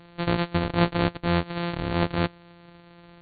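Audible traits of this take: a buzz of ramps at a fixed pitch in blocks of 256 samples; AC-3

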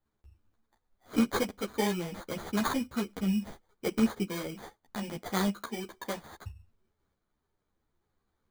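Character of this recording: tremolo saw up 0.7 Hz, depth 35%; aliases and images of a low sample rate 2700 Hz, jitter 0%; a shimmering, thickened sound

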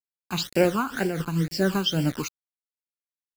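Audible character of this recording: a quantiser's noise floor 6-bit, dither none; phasing stages 12, 2.1 Hz, lowest notch 570–1200 Hz; noise-modulated level

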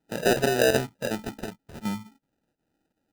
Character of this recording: chopped level 2.7 Hz, depth 60%, duty 90%; aliases and images of a low sample rate 1100 Hz, jitter 0%; AAC

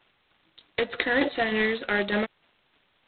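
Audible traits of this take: a quantiser's noise floor 10-bit, dither triangular; tremolo saw down 3.3 Hz, depth 55%; G.726

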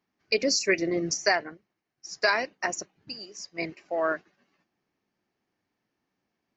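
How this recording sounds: noise floor -82 dBFS; spectral tilt -2.0 dB/oct

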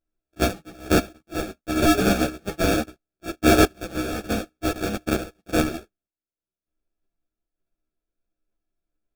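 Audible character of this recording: a buzz of ramps at a fixed pitch in blocks of 64 samples; random-step tremolo 3.3 Hz, depth 85%; aliases and images of a low sample rate 1000 Hz, jitter 0%; a shimmering, thickened sound

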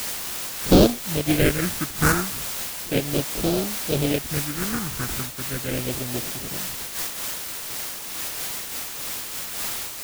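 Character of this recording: aliases and images of a low sample rate 1000 Hz, jitter 20%; phasing stages 4, 0.35 Hz, lowest notch 530–1900 Hz; a quantiser's noise floor 6-bit, dither triangular; noise-modulated level

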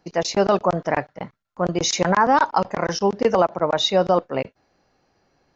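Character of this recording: noise floor -70 dBFS; spectral tilt -4.0 dB/oct

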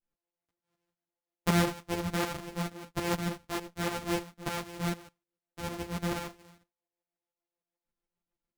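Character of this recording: a buzz of ramps at a fixed pitch in blocks of 256 samples; tremolo saw up 6.7 Hz, depth 65%; a shimmering, thickened sound

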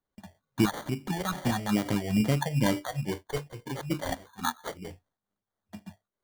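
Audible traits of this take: phasing stages 4, 2.3 Hz, lowest notch 220–2400 Hz; aliases and images of a low sample rate 2600 Hz, jitter 0%; noise-modulated level

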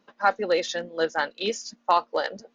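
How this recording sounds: noise floor -68 dBFS; spectral tilt -2.5 dB/oct

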